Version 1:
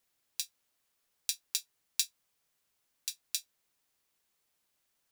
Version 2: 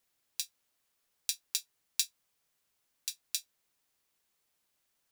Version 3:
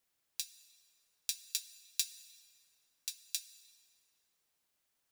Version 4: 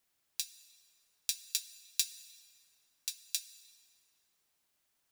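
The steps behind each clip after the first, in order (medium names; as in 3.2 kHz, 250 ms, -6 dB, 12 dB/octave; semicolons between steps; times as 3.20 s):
no audible change
plate-style reverb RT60 2.8 s, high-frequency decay 0.65×, DRR 13 dB; trim -3 dB
band-stop 500 Hz, Q 12; trim +2.5 dB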